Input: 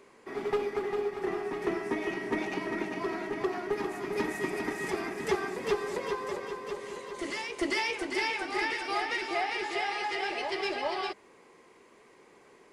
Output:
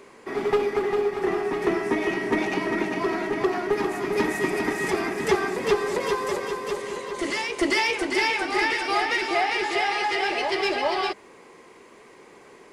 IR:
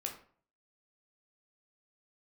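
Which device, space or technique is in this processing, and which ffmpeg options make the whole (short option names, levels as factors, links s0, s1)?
parallel distortion: -filter_complex "[0:a]asettb=1/sr,asplit=3[s0][s1][s2];[s0]atrim=end=6.004[s3];[s1]atrim=start=6:end=6.82,asetpts=PTS-STARTPTS,afade=t=in:d=0.004:c=qsin,afade=t=out:st=0.816:d=0.004:c=qsin,highshelf=f=6300:g=7.5[s4];[s2]atrim=start=6.816[s5];[s3][s4]acrossfade=d=0.004:c1=hsin:c2=qsin[s6];[s6][s5]acrossfade=d=0.004:c1=qsin:c2=hsin,asplit=2[s7][s8];[s8]asoftclip=type=hard:threshold=0.0224,volume=0.251[s9];[s7][s9]amix=inputs=2:normalize=0,volume=2.11"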